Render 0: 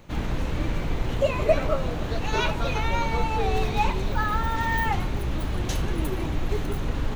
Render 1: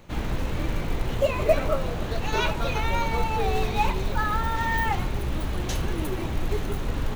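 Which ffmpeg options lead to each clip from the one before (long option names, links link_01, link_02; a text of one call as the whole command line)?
ffmpeg -i in.wav -af "acrusher=bits=7:mode=log:mix=0:aa=0.000001,bandreject=frequency=50:width_type=h:width=6,bandreject=frequency=100:width_type=h:width=6,bandreject=frequency=150:width_type=h:width=6,bandreject=frequency=200:width_type=h:width=6,bandreject=frequency=250:width_type=h:width=6,bandreject=frequency=300:width_type=h:width=6" out.wav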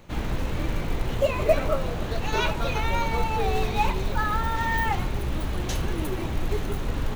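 ffmpeg -i in.wav -af anull out.wav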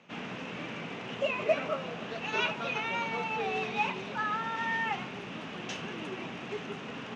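ffmpeg -i in.wav -af "highpass=frequency=180:width=0.5412,highpass=frequency=180:width=1.3066,equalizer=frequency=330:width_type=q:width=4:gain=-8,equalizer=frequency=550:width_type=q:width=4:gain=-4,equalizer=frequency=900:width_type=q:width=4:gain=-3,equalizer=frequency=2700:width_type=q:width=4:gain=7,equalizer=frequency=4200:width_type=q:width=4:gain=-8,lowpass=frequency=5700:width=0.5412,lowpass=frequency=5700:width=1.3066,volume=-4dB" out.wav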